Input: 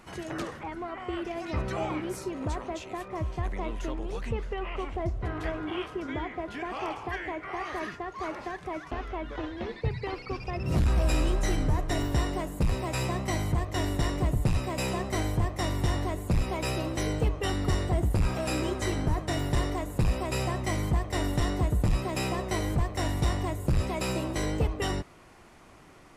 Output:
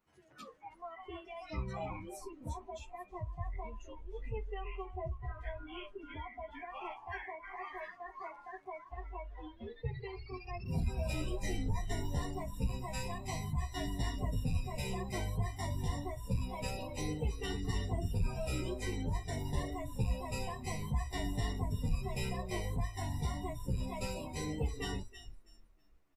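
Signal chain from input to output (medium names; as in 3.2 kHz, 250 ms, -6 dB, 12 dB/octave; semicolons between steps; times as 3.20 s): 0.71–1.60 s: treble shelf 3.6 kHz +5.5 dB; frequency-shifting echo 323 ms, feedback 51%, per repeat -31 Hz, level -9 dB; spectral noise reduction 20 dB; 6.70–8.78 s: treble shelf 7.9 kHz +7.5 dB; endless flanger 10.2 ms -0.82 Hz; trim -5.5 dB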